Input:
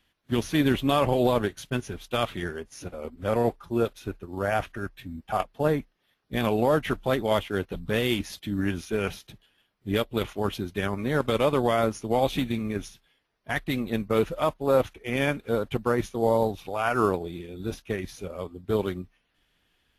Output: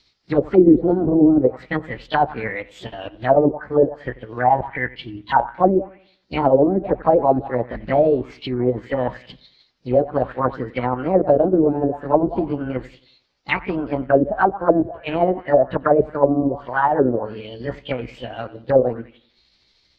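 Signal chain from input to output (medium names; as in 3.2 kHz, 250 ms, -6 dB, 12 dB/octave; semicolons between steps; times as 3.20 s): rotating-head pitch shifter +4 st; feedback echo behind a low-pass 90 ms, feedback 37%, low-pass 3.6 kHz, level -18 dB; touch-sensitive low-pass 310–5000 Hz down, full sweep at -19.5 dBFS; trim +5 dB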